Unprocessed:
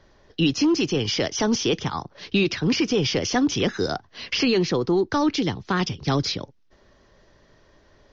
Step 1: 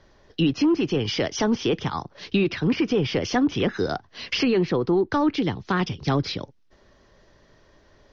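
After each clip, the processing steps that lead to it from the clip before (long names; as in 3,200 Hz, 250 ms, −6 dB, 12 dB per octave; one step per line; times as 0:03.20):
treble cut that deepens with the level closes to 2,200 Hz, closed at −17.5 dBFS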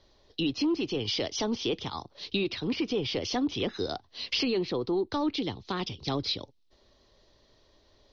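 graphic EQ with 15 bands 160 Hz −7 dB, 1,600 Hz −8 dB, 4,000 Hz +10 dB
level −6.5 dB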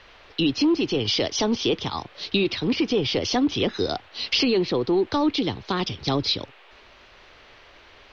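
noise in a band 380–3,200 Hz −59 dBFS
level +7 dB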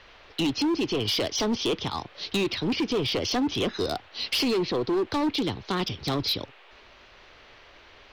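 hard clipping −20 dBFS, distortion −13 dB
level −1.5 dB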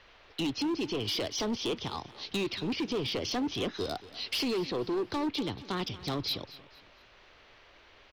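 repeating echo 231 ms, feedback 35%, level −17.5 dB
level −6 dB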